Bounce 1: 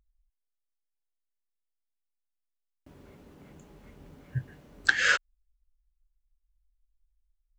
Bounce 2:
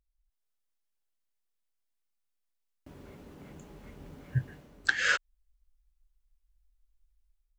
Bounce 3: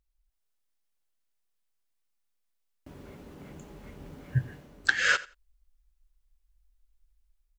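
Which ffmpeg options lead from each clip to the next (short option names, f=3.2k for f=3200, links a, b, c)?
-af "dynaudnorm=f=120:g=5:m=11dB,volume=-8dB"
-af "aecho=1:1:87|174:0.112|0.0191,volume=2.5dB"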